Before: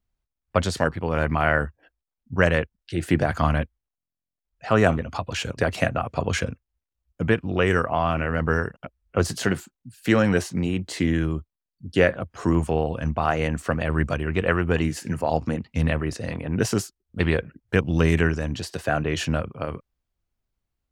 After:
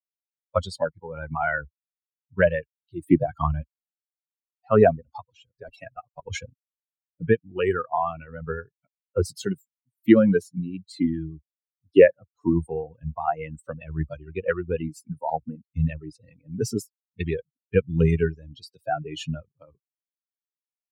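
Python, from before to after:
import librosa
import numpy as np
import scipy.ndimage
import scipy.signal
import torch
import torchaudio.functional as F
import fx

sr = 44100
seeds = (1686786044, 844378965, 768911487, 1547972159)

y = fx.level_steps(x, sr, step_db=12, at=(5.25, 6.29), fade=0.02)
y = fx.bin_expand(y, sr, power=3.0)
y = fx.peak_eq(y, sr, hz=390.0, db=11.5, octaves=2.4)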